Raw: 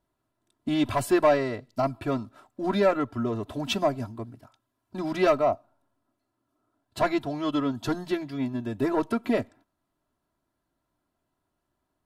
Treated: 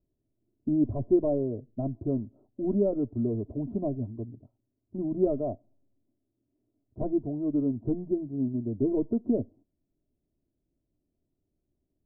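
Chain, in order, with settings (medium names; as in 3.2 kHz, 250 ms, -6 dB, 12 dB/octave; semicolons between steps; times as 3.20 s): inverse Chebyshev low-pass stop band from 2.2 kHz, stop band 70 dB; bass shelf 64 Hz +6 dB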